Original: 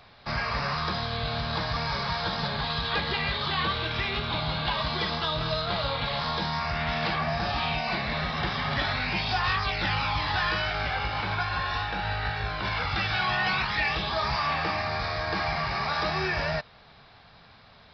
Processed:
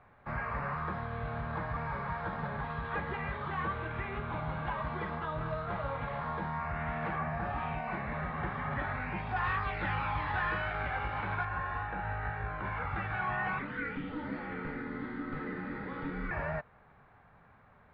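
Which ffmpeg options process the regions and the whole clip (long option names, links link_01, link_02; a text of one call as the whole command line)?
ffmpeg -i in.wav -filter_complex "[0:a]asettb=1/sr,asplit=3[link_01][link_02][link_03];[link_01]atrim=end=9.364[link_04];[link_02]atrim=start=9.36:end=11.45,asetpts=PTS-STARTPTS,afade=type=in:duration=0.004:curve=qsin,afade=type=out:start_time=2.086:duration=0.004:curve=qsin,equalizer=frequency=4000:width_type=o:width=1.3:gain=8.5,acrusher=bits=2:mode=log:mix=0:aa=0.000001[link_05];[link_03]atrim=start=11.446[link_06];[link_04][link_05]acrossfade=duration=0.004:curve1=hsin:curve2=qsin[link_07];[link_07][link_06]acrossfade=duration=0.004:curve1=qsin:curve2=hsin,asettb=1/sr,asplit=3[link_08][link_09][link_10];[link_08]atrim=end=13.594[link_11];[link_09]atrim=start=13.59:end=16.31,asetpts=PTS-STARTPTS,afade=type=in:duration=0.004:curve=qsin,afade=type=out:start_time=2.716:duration=0.004:curve=qsin,equalizer=frequency=1100:width_type=o:width=0.77:gain=-14,afreqshift=-340[link_12];[link_10]atrim=start=16.306[link_13];[link_11][link_12]acrossfade=duration=0.004:curve1=hsin:curve2=qsin[link_14];[link_14][link_13]acrossfade=duration=0.004:curve1=qsin:curve2=hsin,lowpass=frequency=1900:width=0.5412,lowpass=frequency=1900:width=1.3066,bandreject=frequency=670:width=17,volume=-5.5dB" out.wav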